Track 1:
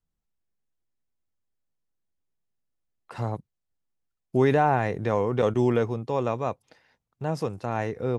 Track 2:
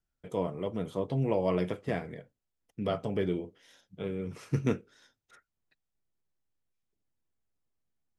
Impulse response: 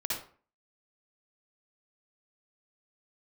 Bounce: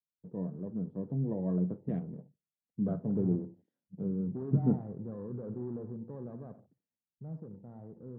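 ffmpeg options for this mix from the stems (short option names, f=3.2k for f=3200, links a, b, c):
-filter_complex "[0:a]asoftclip=type=tanh:threshold=-24.5dB,volume=-8.5dB,asplit=2[a][b];[b]volume=-11dB[c];[1:a]volume=1dB,asplit=2[d][e];[e]volume=-22dB[f];[2:a]atrim=start_sample=2205[g];[c][f]amix=inputs=2:normalize=0[h];[h][g]afir=irnorm=-1:irlink=0[i];[a][d][i]amix=inputs=3:normalize=0,bandpass=f=190:t=q:w=2.1:csg=0,afwtdn=0.000794,dynaudnorm=f=340:g=11:m=4.5dB"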